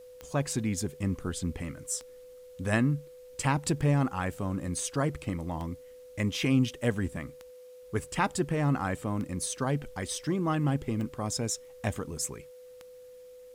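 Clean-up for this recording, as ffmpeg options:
-af "adeclick=t=4,bandreject=f=500:w=30,agate=range=-21dB:threshold=-42dB"

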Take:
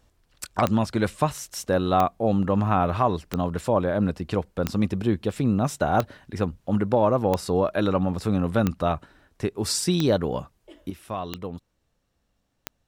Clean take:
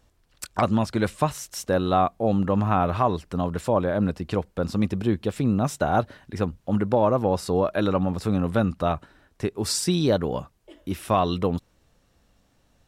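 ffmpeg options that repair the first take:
-af "adeclick=t=4,asetnsamples=n=441:p=0,asendcmd='10.9 volume volume 10dB',volume=0dB"

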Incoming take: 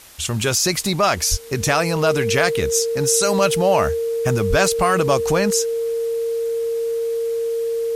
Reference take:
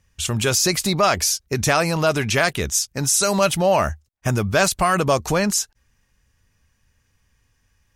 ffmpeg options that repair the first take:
-filter_complex "[0:a]bandreject=f=460:w=30,asplit=3[a][b][c];[a]afade=t=out:st=1.3:d=0.02[d];[b]highpass=f=140:w=0.5412,highpass=f=140:w=1.3066,afade=t=in:st=1.3:d=0.02,afade=t=out:st=1.42:d=0.02[e];[c]afade=t=in:st=1.42:d=0.02[f];[d][e][f]amix=inputs=3:normalize=0,asplit=3[g][h][i];[g]afade=t=out:st=4.49:d=0.02[j];[h]highpass=f=140:w=0.5412,highpass=f=140:w=1.3066,afade=t=in:st=4.49:d=0.02,afade=t=out:st=4.61:d=0.02[k];[i]afade=t=in:st=4.61:d=0.02[l];[j][k][l]amix=inputs=3:normalize=0,afwtdn=0.0071"

